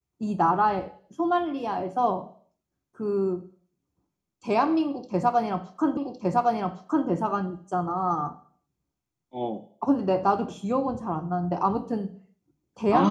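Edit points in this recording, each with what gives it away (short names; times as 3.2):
5.97 repeat of the last 1.11 s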